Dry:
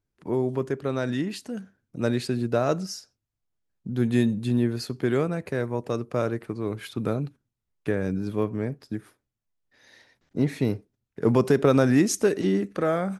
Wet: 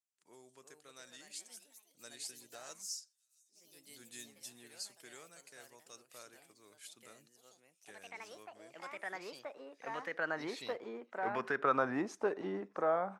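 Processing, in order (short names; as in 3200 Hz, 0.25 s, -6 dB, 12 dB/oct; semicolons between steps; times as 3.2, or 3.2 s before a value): thin delay 0.666 s, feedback 56%, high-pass 4600 Hz, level -23 dB; band-pass sweep 7700 Hz -> 900 Hz, 10.02–12; echoes that change speed 0.399 s, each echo +3 st, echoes 3, each echo -6 dB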